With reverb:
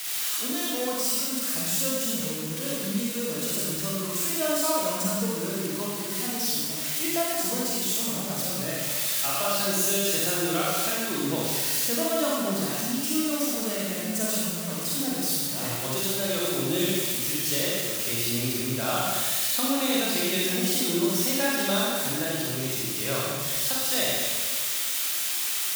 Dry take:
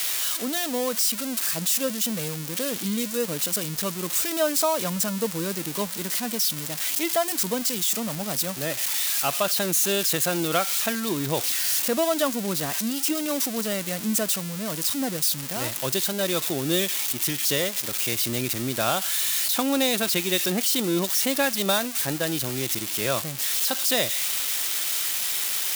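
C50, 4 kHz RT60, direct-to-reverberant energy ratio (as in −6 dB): −3.0 dB, 1.5 s, −6.0 dB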